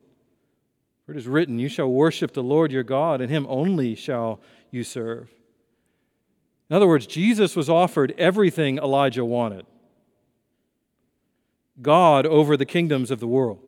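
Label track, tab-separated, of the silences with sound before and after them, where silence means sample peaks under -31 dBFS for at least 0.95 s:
5.210000	6.710000	silence
9.610000	11.850000	silence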